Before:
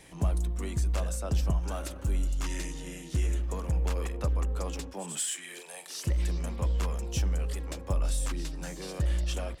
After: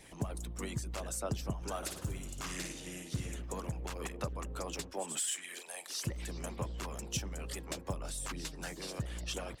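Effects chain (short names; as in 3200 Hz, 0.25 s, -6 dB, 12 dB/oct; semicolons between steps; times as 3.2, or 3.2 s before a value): limiter -25 dBFS, peak gain reduction 8 dB; harmonic-percussive split harmonic -15 dB; 1.77–3.36 flutter echo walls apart 9.5 m, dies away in 0.52 s; gain +2.5 dB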